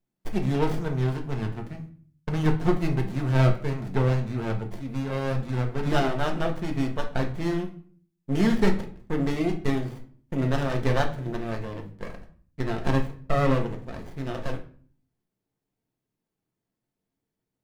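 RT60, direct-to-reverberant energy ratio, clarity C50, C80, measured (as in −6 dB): 0.50 s, 2.0 dB, 11.0 dB, 16.0 dB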